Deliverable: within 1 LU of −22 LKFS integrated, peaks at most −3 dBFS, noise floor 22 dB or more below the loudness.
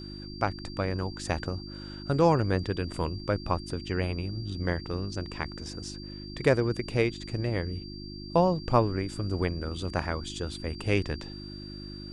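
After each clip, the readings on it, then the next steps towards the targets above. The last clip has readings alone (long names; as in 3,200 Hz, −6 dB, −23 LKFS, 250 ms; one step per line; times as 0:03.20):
mains hum 50 Hz; hum harmonics up to 350 Hz; level of the hum −40 dBFS; interfering tone 4,700 Hz; level of the tone −45 dBFS; integrated loudness −30.0 LKFS; sample peak −8.5 dBFS; target loudness −22.0 LKFS
→ hum removal 50 Hz, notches 7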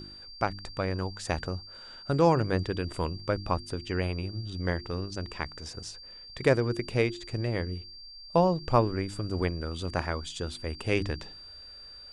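mains hum none found; interfering tone 4,700 Hz; level of the tone −45 dBFS
→ notch filter 4,700 Hz, Q 30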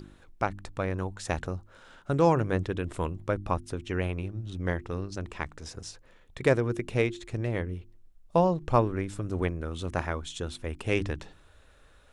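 interfering tone none found; integrated loudness −30.5 LKFS; sample peak −9.0 dBFS; target loudness −22.0 LKFS
→ level +8.5 dB
brickwall limiter −3 dBFS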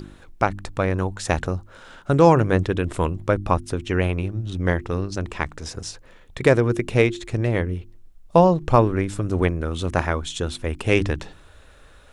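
integrated loudness −22.0 LKFS; sample peak −3.0 dBFS; background noise floor −48 dBFS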